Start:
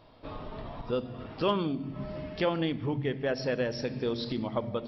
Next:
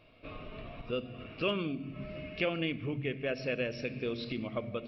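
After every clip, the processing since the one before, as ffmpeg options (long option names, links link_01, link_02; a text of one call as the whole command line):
ffmpeg -i in.wav -af "superequalizer=9b=0.316:12b=3.55:14b=0.631:16b=1.58,volume=-4.5dB" out.wav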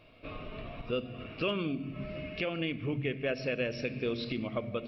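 ffmpeg -i in.wav -af "alimiter=limit=-23.5dB:level=0:latency=1:release=271,volume=2.5dB" out.wav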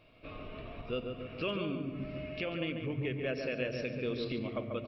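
ffmpeg -i in.wav -filter_complex "[0:a]asplit=2[link_01][link_02];[link_02]adelay=141,lowpass=frequency=1800:poles=1,volume=-4.5dB,asplit=2[link_03][link_04];[link_04]adelay=141,lowpass=frequency=1800:poles=1,volume=0.51,asplit=2[link_05][link_06];[link_06]adelay=141,lowpass=frequency=1800:poles=1,volume=0.51,asplit=2[link_07][link_08];[link_08]adelay=141,lowpass=frequency=1800:poles=1,volume=0.51,asplit=2[link_09][link_10];[link_10]adelay=141,lowpass=frequency=1800:poles=1,volume=0.51,asplit=2[link_11][link_12];[link_12]adelay=141,lowpass=frequency=1800:poles=1,volume=0.51,asplit=2[link_13][link_14];[link_14]adelay=141,lowpass=frequency=1800:poles=1,volume=0.51[link_15];[link_01][link_03][link_05][link_07][link_09][link_11][link_13][link_15]amix=inputs=8:normalize=0,volume=-3.5dB" out.wav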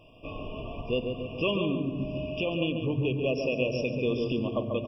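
ffmpeg -i in.wav -af "afftfilt=real='re*eq(mod(floor(b*sr/1024/1200),2),0)':imag='im*eq(mod(floor(b*sr/1024/1200),2),0)':win_size=1024:overlap=0.75,volume=7.5dB" out.wav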